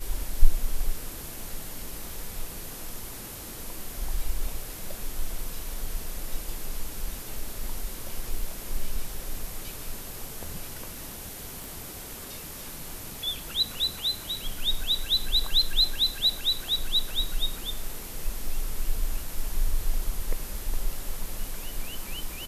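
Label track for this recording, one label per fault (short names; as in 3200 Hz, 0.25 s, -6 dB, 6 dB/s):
11.640000	11.640000	pop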